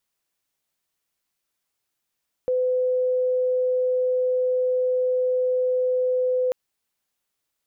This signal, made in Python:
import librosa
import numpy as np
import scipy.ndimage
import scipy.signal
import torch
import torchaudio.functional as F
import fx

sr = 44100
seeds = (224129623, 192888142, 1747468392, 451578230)

y = 10.0 ** (-19.0 / 20.0) * np.sin(2.0 * np.pi * (506.0 * (np.arange(round(4.04 * sr)) / sr)))